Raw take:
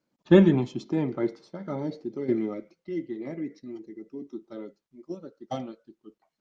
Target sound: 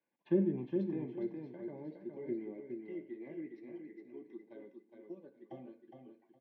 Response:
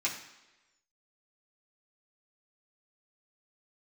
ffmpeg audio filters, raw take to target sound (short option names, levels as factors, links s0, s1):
-filter_complex "[0:a]lowpass=f=2400:w=0.5412,lowpass=f=2400:w=1.3066,aemphasis=mode=production:type=riaa,acrossover=split=430[s0][s1];[s1]acompressor=threshold=0.00316:ratio=12[s2];[s0][s2]amix=inputs=2:normalize=0,asuperstop=centerf=1300:order=20:qfactor=5,aecho=1:1:413|826|1239:0.531|0.106|0.0212,asplit=2[s3][s4];[1:a]atrim=start_sample=2205,afade=t=out:st=0.23:d=0.01,atrim=end_sample=10584[s5];[s4][s5]afir=irnorm=-1:irlink=0,volume=0.266[s6];[s3][s6]amix=inputs=2:normalize=0,volume=0.447"